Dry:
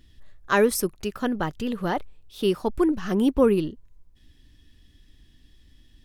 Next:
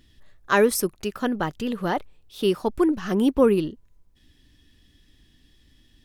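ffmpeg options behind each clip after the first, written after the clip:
-af "lowshelf=f=88:g=-7.5,volume=1.19"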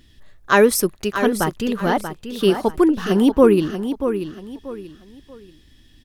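-af "aecho=1:1:635|1270|1905:0.355|0.106|0.0319,volume=1.78"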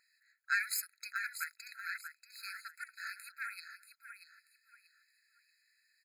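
-af "aeval=exprs='(tanh(3.16*val(0)+0.6)-tanh(0.6))/3.16':c=same,afftfilt=real='re*eq(mod(floor(b*sr/1024/1300),2),1)':imag='im*eq(mod(floor(b*sr/1024/1300),2),1)':win_size=1024:overlap=0.75,volume=0.473"

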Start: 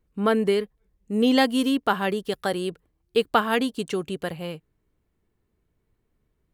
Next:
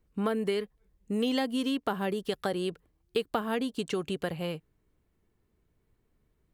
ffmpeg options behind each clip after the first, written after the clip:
-filter_complex "[0:a]acrossover=split=670|7800[s0][s1][s2];[s0]acompressor=threshold=0.0355:ratio=4[s3];[s1]acompressor=threshold=0.0178:ratio=4[s4];[s2]acompressor=threshold=0.00178:ratio=4[s5];[s3][s4][s5]amix=inputs=3:normalize=0"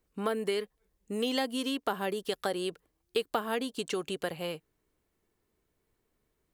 -af "bass=f=250:g=-9,treble=f=4000:g=4"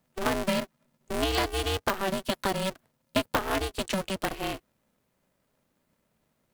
-af "aeval=exprs='val(0)*sgn(sin(2*PI*190*n/s))':c=same,volume=1.5"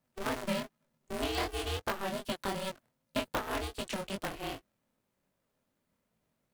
-af "flanger=delay=18:depth=7.5:speed=2.6,volume=0.668"

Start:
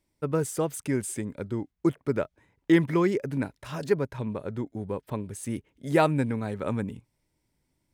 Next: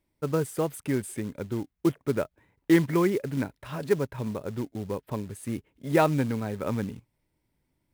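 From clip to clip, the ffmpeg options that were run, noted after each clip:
-af "equalizer=f=6600:w=1.1:g=-9,acrusher=bits=5:mode=log:mix=0:aa=0.000001"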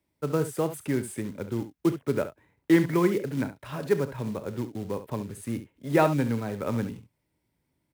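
-filter_complex "[0:a]highpass=64,acrossover=split=200|2900[s0][s1][s2];[s2]asoftclip=type=hard:threshold=0.015[s3];[s0][s1][s3]amix=inputs=3:normalize=0,aecho=1:1:34|69:0.158|0.251"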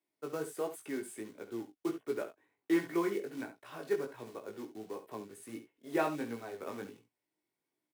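-af "aecho=1:1:2.7:0.33,flanger=delay=16.5:depth=3.6:speed=1.4,highpass=290,volume=0.531"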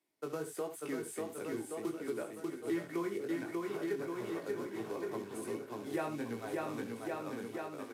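-filter_complex "[0:a]aecho=1:1:590|1121|1599|2029|2416:0.631|0.398|0.251|0.158|0.1,acrossover=split=130[s0][s1];[s1]acompressor=threshold=0.00794:ratio=2.5[s2];[s0][s2]amix=inputs=2:normalize=0,aresample=32000,aresample=44100,volume=1.58"

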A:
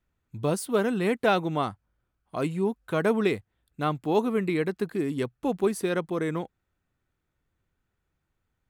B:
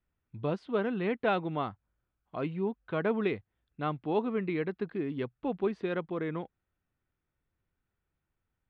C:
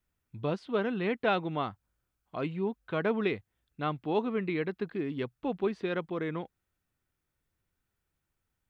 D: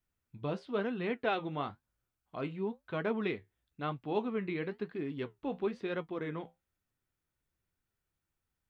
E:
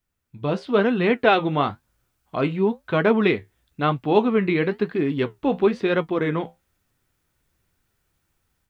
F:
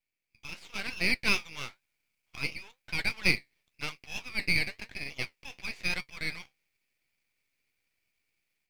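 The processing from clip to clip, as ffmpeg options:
-af "lowpass=f=3500:w=0.5412,lowpass=f=3500:w=1.3066,volume=0.531"
-af "highshelf=f=3100:g=7.5"
-af "flanger=delay=7.4:depth=7.4:regen=-60:speed=1:shape=sinusoidal"
-af "dynaudnorm=f=320:g=3:m=3.16,volume=1.78"
-af "highpass=f=2300:t=q:w=7.6,aeval=exprs='max(val(0),0)':c=same,volume=0.473"

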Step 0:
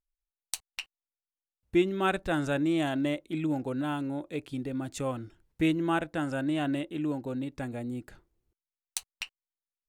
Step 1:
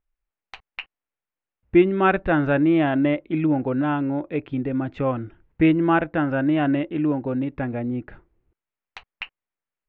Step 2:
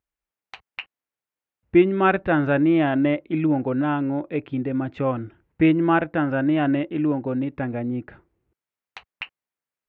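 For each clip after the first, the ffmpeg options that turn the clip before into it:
-af "lowpass=f=2500:w=0.5412,lowpass=f=2500:w=1.3066,volume=2.82"
-af "highpass=71"

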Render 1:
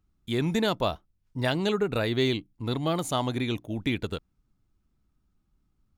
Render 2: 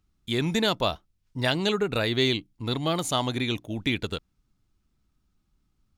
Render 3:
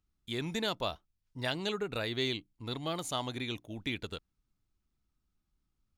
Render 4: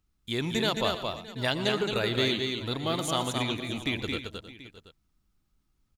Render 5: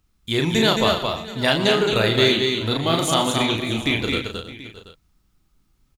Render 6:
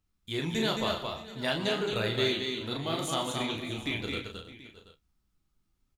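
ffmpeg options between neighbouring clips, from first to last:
-af "equalizer=f=4500:t=o:w=2.6:g=6"
-af "equalizer=f=170:t=o:w=2:g=-2.5,volume=0.376"
-af "aecho=1:1:119|125|220|316|618|733:0.141|0.106|0.596|0.188|0.112|0.126,volume=1.88"
-filter_complex "[0:a]asplit=2[s0][s1];[s1]adelay=36,volume=0.596[s2];[s0][s2]amix=inputs=2:normalize=0,volume=2.51"
-af "flanger=delay=9.9:depth=4.9:regen=-49:speed=0.49:shape=sinusoidal,volume=0.422"

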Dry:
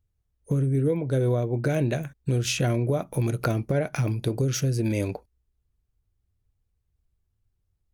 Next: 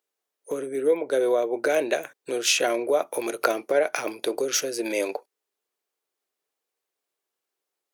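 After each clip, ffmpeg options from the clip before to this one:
-af "highpass=f=400:w=0.5412,highpass=f=400:w=1.3066,volume=2.11"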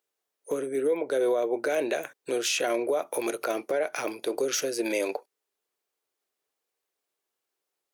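-af "alimiter=limit=0.133:level=0:latency=1:release=64"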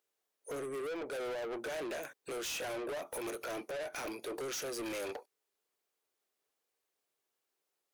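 -af "asoftclip=type=tanh:threshold=0.0168,volume=0.841"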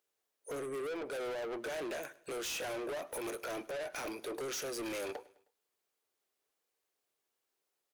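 -af "aecho=1:1:104|208|312:0.0891|0.041|0.0189"

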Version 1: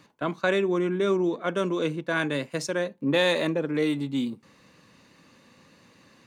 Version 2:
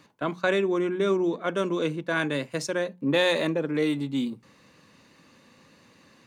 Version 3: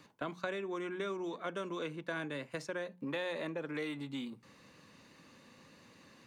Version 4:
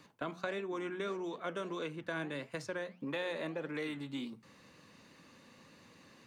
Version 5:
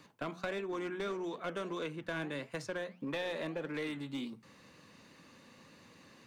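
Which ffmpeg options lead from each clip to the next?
-af "bandreject=f=60:t=h:w=6,bandreject=f=120:t=h:w=6,bandreject=f=180:t=h:w=6"
-filter_complex "[0:a]acrossover=split=740|2600[s0][s1][s2];[s0]acompressor=threshold=0.0126:ratio=4[s3];[s1]acompressor=threshold=0.0112:ratio=4[s4];[s2]acompressor=threshold=0.00282:ratio=4[s5];[s3][s4][s5]amix=inputs=3:normalize=0,volume=0.708"
-af "flanger=delay=4.4:depth=8.1:regen=86:speed=1.6:shape=sinusoidal,volume=1.68"
-af "aeval=exprs='clip(val(0),-1,0.0188)':c=same,volume=1.12"

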